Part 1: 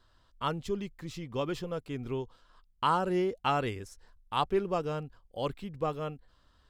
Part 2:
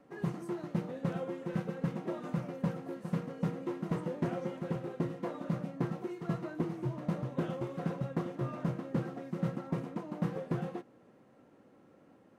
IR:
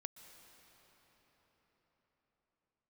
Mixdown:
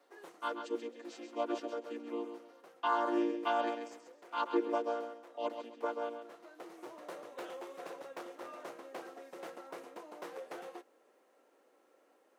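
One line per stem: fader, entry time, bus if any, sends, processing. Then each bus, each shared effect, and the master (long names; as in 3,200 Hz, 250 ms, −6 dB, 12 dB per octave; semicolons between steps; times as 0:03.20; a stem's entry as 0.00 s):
0.0 dB, 0.00 s, no send, echo send −8 dB, channel vocoder with a chord as carrier major triad, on A#3
−4.0 dB, 0.00 s, no send, no echo send, wavefolder on the positive side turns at −32.5 dBFS; automatic ducking −13 dB, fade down 0.60 s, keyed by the first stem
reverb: not used
echo: repeating echo 133 ms, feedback 26%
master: high-pass filter 380 Hz 24 dB per octave; high-shelf EQ 4,700 Hz +10 dB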